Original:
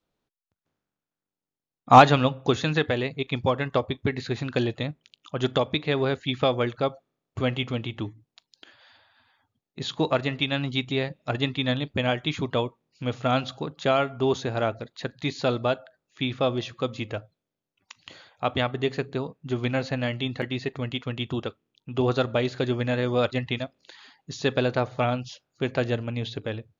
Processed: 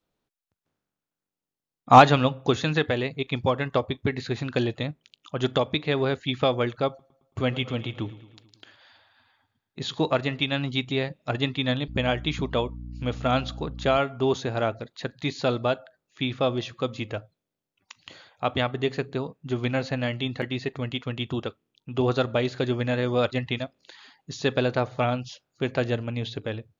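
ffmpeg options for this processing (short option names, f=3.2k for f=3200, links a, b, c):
-filter_complex "[0:a]asettb=1/sr,asplit=3[a][b][c];[a]atrim=end=6.884[d];[b]atrim=start=6.88:end=9.99,asetpts=PTS-STARTPTS,afade=t=in:d=0.004:c=qsin,afade=t=out:st=3.106:d=0.004:c=qsin,aecho=1:1:110|220|330|440|550|660:0.133|0.08|0.048|0.0288|0.0173|0.0104,atrim=end_sample=137151[e];[c]atrim=start=9.986[f];[d][e]acrossfade=d=0.004:c1=hsin:c2=qsin[g];[g][f]acrossfade=d=0.004:c1=qsin:c2=hsin,asettb=1/sr,asplit=3[h][i][j];[h]atrim=end=11.884[k];[i]atrim=start=11.88:end=13.98,asetpts=PTS-STARTPTS,afade=t=in:d=0.004:c=qsin,afade=t=out:st=2.096:d=0.004:c=qsin,aeval=exprs='val(0)+0.0158*(sin(2*PI*60*n/s)+sin(2*PI*2*60*n/s)/2+sin(2*PI*3*60*n/s)/3+sin(2*PI*4*60*n/s)/4+sin(2*PI*5*60*n/s)/5)':c=same[l];[j]atrim=start=13.976[m];[k][l]acrossfade=d=0.004:c1=hsin:c2=qsin[n];[n][m]acrossfade=d=0.004:c1=qsin:c2=hsin"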